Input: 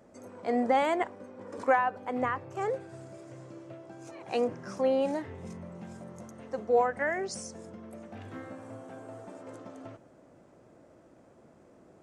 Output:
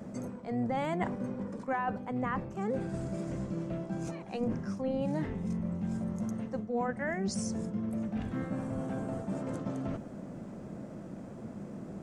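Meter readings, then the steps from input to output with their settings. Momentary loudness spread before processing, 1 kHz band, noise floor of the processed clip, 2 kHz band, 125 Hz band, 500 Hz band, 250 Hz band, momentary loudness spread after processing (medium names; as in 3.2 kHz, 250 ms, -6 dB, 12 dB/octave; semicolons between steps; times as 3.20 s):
20 LU, -6.5 dB, -45 dBFS, -5.5 dB, +11.0 dB, -6.0 dB, +4.5 dB, 11 LU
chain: octave divider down 1 oct, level -2 dB; peaking EQ 200 Hz +14.5 dB 0.67 oct; reverse; compression 5:1, threshold -40 dBFS, peak gain reduction 20.5 dB; reverse; trim +8 dB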